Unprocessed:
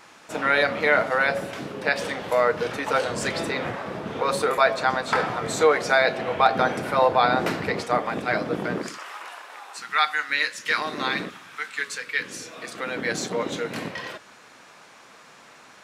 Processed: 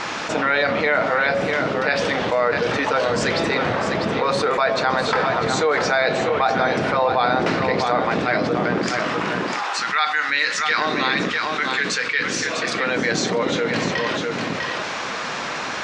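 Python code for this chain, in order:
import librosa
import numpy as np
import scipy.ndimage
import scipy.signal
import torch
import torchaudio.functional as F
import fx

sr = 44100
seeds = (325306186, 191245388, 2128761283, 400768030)

y = scipy.signal.sosfilt(scipy.signal.butter(4, 6300.0, 'lowpass', fs=sr, output='sos'), x)
y = y + 10.0 ** (-10.0 / 20.0) * np.pad(y, (int(649 * sr / 1000.0), 0))[:len(y)]
y = fx.env_flatten(y, sr, amount_pct=70)
y = y * 10.0 ** (-3.0 / 20.0)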